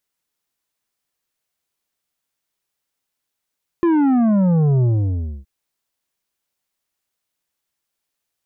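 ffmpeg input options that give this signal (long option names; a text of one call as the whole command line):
ffmpeg -f lavfi -i "aevalsrc='0.211*clip((1.62-t)/0.62,0,1)*tanh(2.66*sin(2*PI*350*1.62/log(65/350)*(exp(log(65/350)*t/1.62)-1)))/tanh(2.66)':duration=1.62:sample_rate=44100" out.wav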